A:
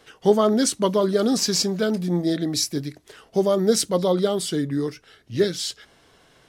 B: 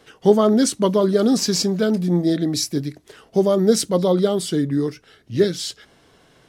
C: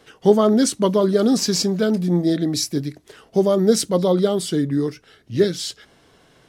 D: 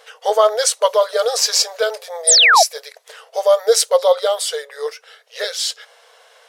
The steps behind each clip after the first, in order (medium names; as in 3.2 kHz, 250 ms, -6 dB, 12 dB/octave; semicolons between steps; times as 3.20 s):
peaking EQ 200 Hz +4.5 dB 2.8 oct
no audible change
painted sound fall, 2.27–2.63 s, 600–10000 Hz -17 dBFS; brick-wall FIR high-pass 440 Hz; trim +7 dB